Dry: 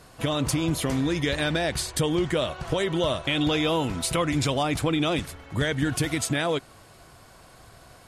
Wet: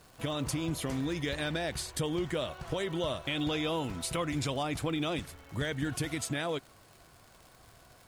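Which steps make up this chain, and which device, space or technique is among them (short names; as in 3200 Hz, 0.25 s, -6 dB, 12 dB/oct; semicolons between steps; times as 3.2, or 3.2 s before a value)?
vinyl LP (crackle 140/s -36 dBFS; white noise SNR 40 dB); gain -8 dB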